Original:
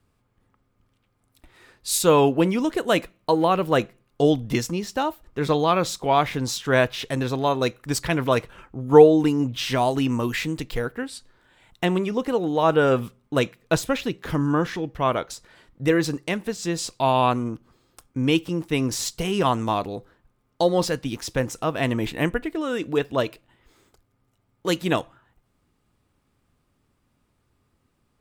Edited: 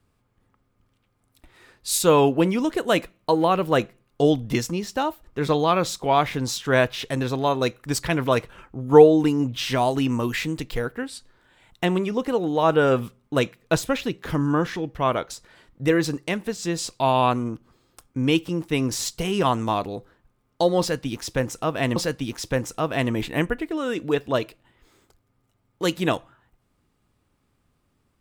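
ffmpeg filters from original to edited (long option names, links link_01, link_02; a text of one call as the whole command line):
ffmpeg -i in.wav -filter_complex "[0:a]asplit=2[link_01][link_02];[link_01]atrim=end=21.962[link_03];[link_02]atrim=start=20.798[link_04];[link_03][link_04]acrossfade=duration=0.004:curve1=hsin:curve2=hsin" out.wav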